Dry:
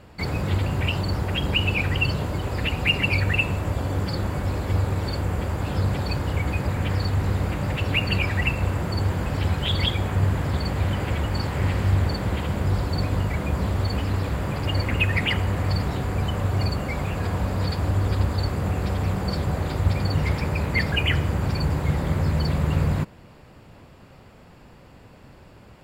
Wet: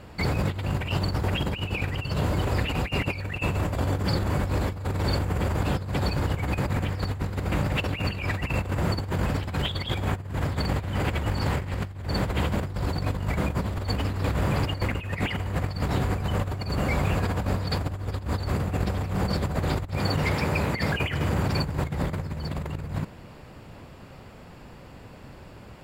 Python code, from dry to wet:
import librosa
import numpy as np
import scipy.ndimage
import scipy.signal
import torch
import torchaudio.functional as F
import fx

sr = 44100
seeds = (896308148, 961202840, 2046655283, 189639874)

y = fx.highpass(x, sr, hz=fx.line((19.97, 200.0), (21.65, 87.0)), slope=6, at=(19.97, 21.65), fade=0.02)
y = fx.over_compress(y, sr, threshold_db=-26.0, ratio=-0.5)